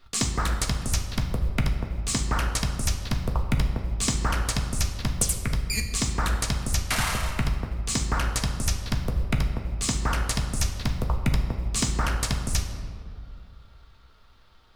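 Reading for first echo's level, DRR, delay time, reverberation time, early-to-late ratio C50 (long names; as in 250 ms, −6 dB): no echo audible, 2.0 dB, no echo audible, 2.4 s, 6.5 dB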